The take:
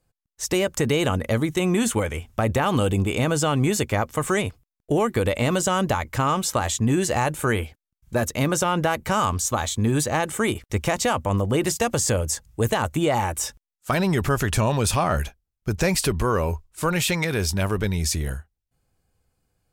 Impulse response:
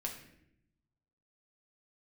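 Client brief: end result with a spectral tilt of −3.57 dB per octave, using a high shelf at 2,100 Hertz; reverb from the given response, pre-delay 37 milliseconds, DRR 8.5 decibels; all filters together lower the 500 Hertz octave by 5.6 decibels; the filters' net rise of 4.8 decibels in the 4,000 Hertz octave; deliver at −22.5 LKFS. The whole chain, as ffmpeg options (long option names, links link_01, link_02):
-filter_complex "[0:a]equalizer=frequency=500:width_type=o:gain=-7.5,highshelf=frequency=2100:gain=3,equalizer=frequency=4000:width_type=o:gain=3.5,asplit=2[link_01][link_02];[1:a]atrim=start_sample=2205,adelay=37[link_03];[link_02][link_03]afir=irnorm=-1:irlink=0,volume=-8.5dB[link_04];[link_01][link_04]amix=inputs=2:normalize=0"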